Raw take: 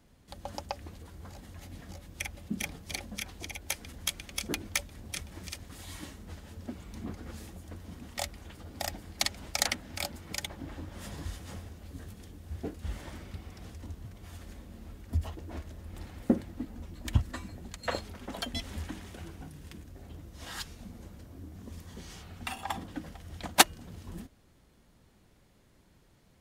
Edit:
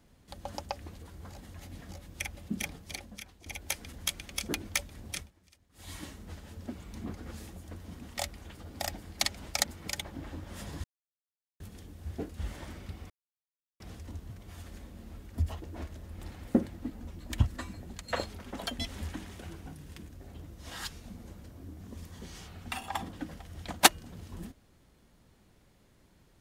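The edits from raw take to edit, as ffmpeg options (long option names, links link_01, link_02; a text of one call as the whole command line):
ffmpeg -i in.wav -filter_complex "[0:a]asplit=8[link_01][link_02][link_03][link_04][link_05][link_06][link_07][link_08];[link_01]atrim=end=3.46,asetpts=PTS-STARTPTS,afade=type=out:start_time=2.58:duration=0.88:silence=0.177828[link_09];[link_02]atrim=start=3.46:end=5.32,asetpts=PTS-STARTPTS,afade=type=in:duration=0.004:curve=hsin:silence=0.177828,afade=type=out:start_time=1.7:duration=0.16:silence=0.0841395[link_10];[link_03]atrim=start=5.32:end=5.73,asetpts=PTS-STARTPTS,volume=-21.5dB[link_11];[link_04]atrim=start=5.73:end=9.642,asetpts=PTS-STARTPTS,afade=type=in:duration=0.16:silence=0.0841395[link_12];[link_05]atrim=start=10.088:end=11.29,asetpts=PTS-STARTPTS,afade=type=out:start_time=1.198:duration=0.004:curve=hsin[link_13];[link_06]atrim=start=11.29:end=12.05,asetpts=PTS-STARTPTS,volume=0[link_14];[link_07]atrim=start=12.05:end=13.55,asetpts=PTS-STARTPTS,afade=type=in:duration=0.004:curve=hsin,afade=type=out:start_time=1.496:duration=0.004:curve=hsin,apad=pad_dur=0.7[link_15];[link_08]atrim=start=13.55,asetpts=PTS-STARTPTS,afade=type=in:duration=0.004:curve=hsin[link_16];[link_09][link_10][link_11][link_12]concat=n=4:v=0:a=1[link_17];[link_13][link_14][link_15][link_16]concat=n=4:v=0:a=1[link_18];[link_17][link_18]acrossfade=duration=0.004:curve1=hsin:curve2=hsin" out.wav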